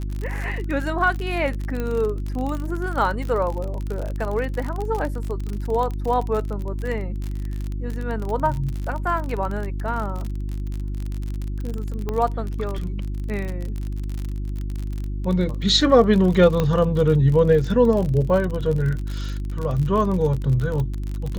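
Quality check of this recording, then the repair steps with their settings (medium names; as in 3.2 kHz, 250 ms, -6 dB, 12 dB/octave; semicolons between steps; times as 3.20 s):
crackle 45 per s -26 dBFS
hum 50 Hz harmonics 7 -27 dBFS
1.80 s: pop -15 dBFS
12.09 s: pop -14 dBFS
16.60 s: pop -9 dBFS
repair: de-click; de-hum 50 Hz, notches 7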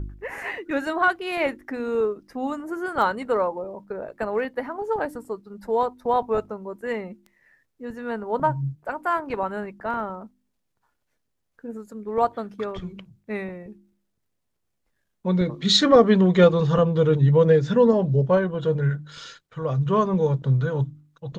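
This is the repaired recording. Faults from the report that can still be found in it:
nothing left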